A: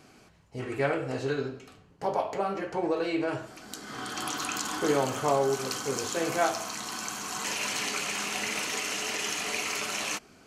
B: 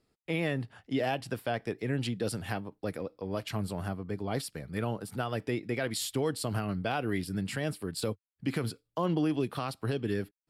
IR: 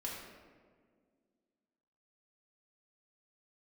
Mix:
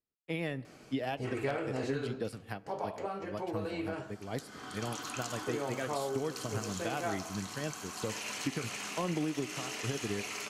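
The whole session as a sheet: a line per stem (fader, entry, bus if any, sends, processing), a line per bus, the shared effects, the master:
1.75 s -0.5 dB -> 2.53 s -8 dB, 0.65 s, no send, none
+2.5 dB, 0.00 s, send -19 dB, upward expansion 2.5:1, over -43 dBFS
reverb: on, RT60 1.8 s, pre-delay 3 ms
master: wavefolder -16 dBFS; compression 6:1, threshold -30 dBFS, peak gain reduction 8.5 dB

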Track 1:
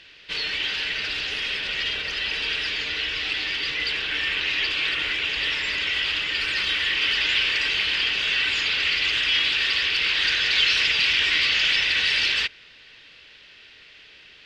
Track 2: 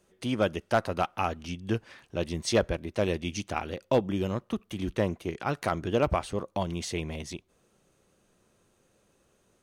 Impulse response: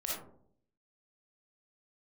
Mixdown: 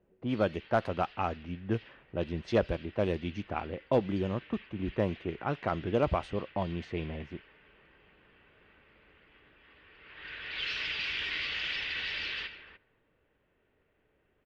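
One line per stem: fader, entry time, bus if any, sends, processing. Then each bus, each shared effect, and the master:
10.05 s -17 dB -> 10.73 s -10 dB, 0.00 s, no send, echo send -8.5 dB, auto duck -10 dB, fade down 0.95 s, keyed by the second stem
-2.0 dB, 0.00 s, no send, no echo send, none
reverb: none
echo: delay 297 ms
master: level-controlled noise filter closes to 730 Hz, open at -24 dBFS; low-pass 2.1 kHz 6 dB/octave

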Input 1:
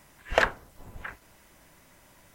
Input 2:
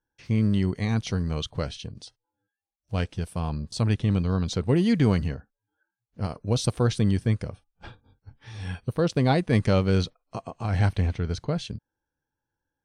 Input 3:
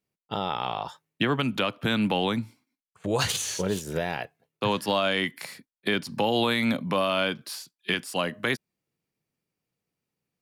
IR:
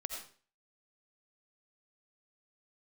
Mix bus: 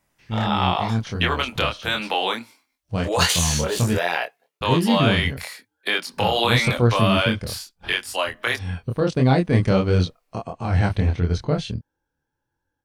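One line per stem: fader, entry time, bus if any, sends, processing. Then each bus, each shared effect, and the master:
-10.0 dB, 0.00 s, no send, none
-2.5 dB, 0.00 s, muted 3.97–4.61 s, no send, treble shelf 4.6 kHz -5 dB
+1.5 dB, 0.00 s, no send, high-pass 560 Hz 12 dB/octave; level rider gain up to 12 dB; auto duck -10 dB, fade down 1.75 s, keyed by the second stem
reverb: none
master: level rider gain up to 11.5 dB; chorus 1.5 Hz, depth 4.4 ms

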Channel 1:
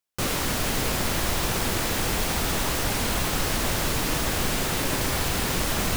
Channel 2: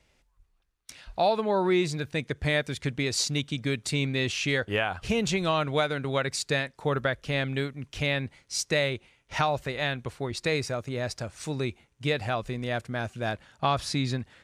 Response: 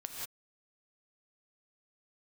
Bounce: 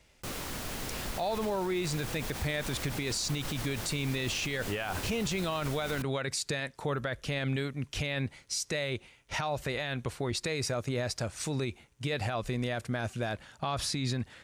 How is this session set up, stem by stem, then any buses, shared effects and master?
-12.0 dB, 0.05 s, no send, none
+2.5 dB, 0.00 s, no send, treble shelf 6.3 kHz +5 dB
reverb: none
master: peak limiter -23.5 dBFS, peak gain reduction 14.5 dB

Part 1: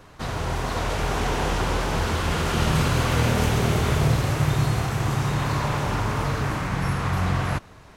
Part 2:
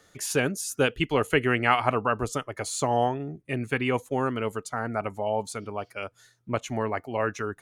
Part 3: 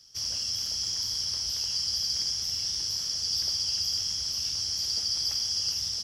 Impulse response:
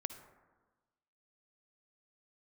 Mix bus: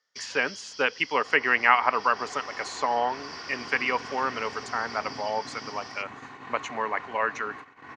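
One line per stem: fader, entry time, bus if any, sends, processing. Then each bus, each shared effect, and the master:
-15.0 dB, 1.05 s, send -15.5 dB, comb filter that takes the minimum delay 2.7 ms
+1.0 dB, 0.00 s, send -23 dB, high-pass 530 Hz 6 dB/octave; treble shelf 6 kHz +10 dB
+1.5 dB, 0.00 s, no send, peaking EQ 3.8 kHz +6.5 dB 0.59 oct; auto duck -11 dB, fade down 1.20 s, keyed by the second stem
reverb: on, RT60 1.3 s, pre-delay 48 ms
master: gate -40 dBFS, range -22 dB; low-pass that closes with the level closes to 2.9 kHz, closed at -17.5 dBFS; cabinet simulation 240–5500 Hz, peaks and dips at 350 Hz -7 dB, 660 Hz -4 dB, 1 kHz +6 dB, 1.9 kHz +6 dB, 3.5 kHz -6 dB, 5.2 kHz -8 dB

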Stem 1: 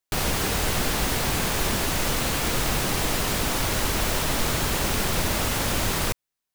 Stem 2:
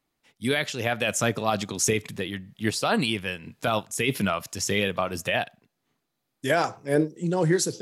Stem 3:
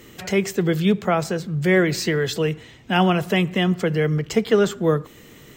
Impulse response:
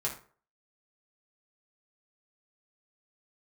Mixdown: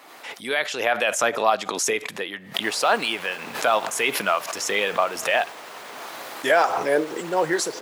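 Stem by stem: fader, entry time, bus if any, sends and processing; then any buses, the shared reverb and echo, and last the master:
-9.5 dB, 2.50 s, bus A, no send, peaking EQ 15 kHz -5 dB 1.3 oct
+1.5 dB, 0.00 s, no bus, no send, swell ahead of each attack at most 44 dB/s
mute
bus A: 0.0 dB, peak limiter -29.5 dBFS, peak gain reduction 7.5 dB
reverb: none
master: high-pass 670 Hz 12 dB/octave; treble shelf 2.3 kHz -11.5 dB; level rider gain up to 8 dB

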